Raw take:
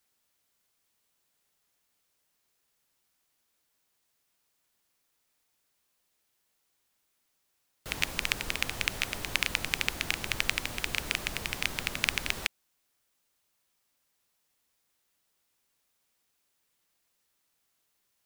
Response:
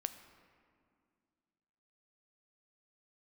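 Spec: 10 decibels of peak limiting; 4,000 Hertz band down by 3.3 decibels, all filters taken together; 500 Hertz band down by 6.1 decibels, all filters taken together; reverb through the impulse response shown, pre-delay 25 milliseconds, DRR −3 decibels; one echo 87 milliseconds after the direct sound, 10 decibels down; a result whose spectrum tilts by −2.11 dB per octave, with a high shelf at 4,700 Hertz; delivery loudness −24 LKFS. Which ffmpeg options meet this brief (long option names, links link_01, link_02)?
-filter_complex "[0:a]equalizer=frequency=500:width_type=o:gain=-8,equalizer=frequency=4000:width_type=o:gain=-6,highshelf=frequency=4700:gain=3,alimiter=limit=-13.5dB:level=0:latency=1,aecho=1:1:87:0.316,asplit=2[link_01][link_02];[1:a]atrim=start_sample=2205,adelay=25[link_03];[link_02][link_03]afir=irnorm=-1:irlink=0,volume=4dB[link_04];[link_01][link_04]amix=inputs=2:normalize=0,volume=8dB"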